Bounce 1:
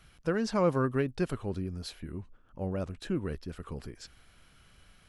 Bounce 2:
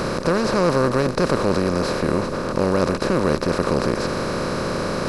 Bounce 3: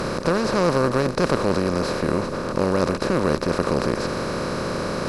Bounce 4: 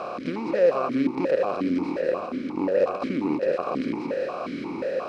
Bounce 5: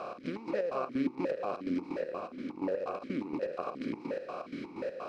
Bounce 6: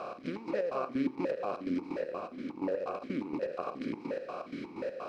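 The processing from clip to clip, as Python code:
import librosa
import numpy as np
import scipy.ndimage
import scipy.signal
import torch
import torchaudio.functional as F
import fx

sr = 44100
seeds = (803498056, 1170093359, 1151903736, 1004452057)

y1 = fx.bin_compress(x, sr, power=0.2)
y1 = F.gain(torch.from_numpy(y1), 4.0).numpy()
y2 = fx.cheby_harmonics(y1, sr, harmonics=(3,), levels_db=(-19,), full_scale_db=-3.0)
y2 = F.gain(torch.from_numpy(y2), 1.5).numpy()
y3 = y2 + 10.0 ** (-6.5 / 20.0) * np.pad(y2, (int(200 * sr / 1000.0), 0))[:len(y2)]
y3 = fx.vowel_held(y3, sr, hz=5.6)
y3 = F.gain(torch.from_numpy(y3), 6.0).numpy()
y4 = fx.chopper(y3, sr, hz=4.2, depth_pct=65, duty_pct=55)
y4 = F.gain(torch.from_numpy(y4), -7.5).numpy()
y5 = y4 + 10.0 ** (-21.0 / 20.0) * np.pad(y4, (int(88 * sr / 1000.0), 0))[:len(y4)]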